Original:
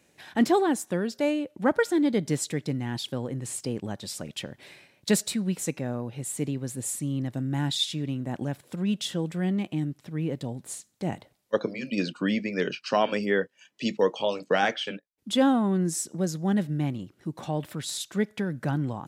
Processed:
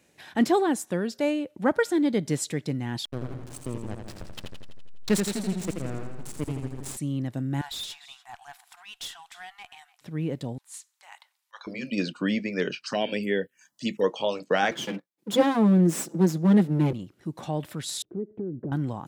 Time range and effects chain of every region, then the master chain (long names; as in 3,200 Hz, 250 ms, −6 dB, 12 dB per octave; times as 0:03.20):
0:03.05–0:06.97: slack as between gear wheels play −24 dBFS + feedback echo with a swinging delay time 83 ms, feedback 62%, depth 74 cents, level −5.5 dB
0:07.61–0:10.01: linear-phase brick-wall high-pass 680 Hz + single-tap delay 295 ms −21.5 dB + tube saturation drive 32 dB, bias 0.3
0:10.58–0:11.67: Chebyshev high-pass filter 910 Hz, order 4 + transient designer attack −12 dB, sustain −1 dB
0:12.86–0:14.04: phaser swept by the level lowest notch 340 Hz, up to 1,200 Hz, full sweep at −22 dBFS + high-shelf EQ 5,500 Hz +9.5 dB
0:14.71–0:16.93: lower of the sound and its delayed copy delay 5.9 ms + high-pass filter 130 Hz 24 dB per octave + parametric band 270 Hz +9 dB 1.7 octaves
0:18.02–0:18.72: low-pass with resonance 370 Hz, resonance Q 4.1 + downward compressor 3 to 1, threshold −31 dBFS
whole clip: no processing